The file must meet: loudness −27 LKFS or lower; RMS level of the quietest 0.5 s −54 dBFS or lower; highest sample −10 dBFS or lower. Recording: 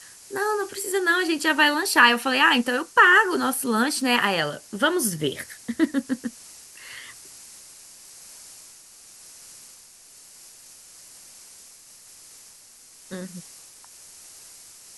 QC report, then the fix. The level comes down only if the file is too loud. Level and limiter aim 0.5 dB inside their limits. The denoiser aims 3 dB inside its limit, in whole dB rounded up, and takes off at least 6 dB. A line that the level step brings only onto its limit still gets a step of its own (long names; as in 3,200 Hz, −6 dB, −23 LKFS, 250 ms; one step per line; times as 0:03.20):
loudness −21.0 LKFS: out of spec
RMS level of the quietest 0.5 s −50 dBFS: out of spec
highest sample −3.0 dBFS: out of spec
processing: level −6.5 dB
brickwall limiter −10.5 dBFS